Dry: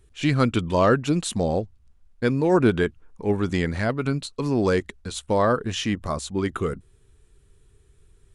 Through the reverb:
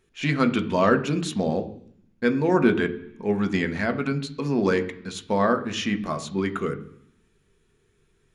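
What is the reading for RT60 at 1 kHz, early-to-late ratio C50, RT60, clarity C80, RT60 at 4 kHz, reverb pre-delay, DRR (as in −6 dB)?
0.70 s, 14.5 dB, 0.70 s, 17.0 dB, 0.90 s, 3 ms, 6.5 dB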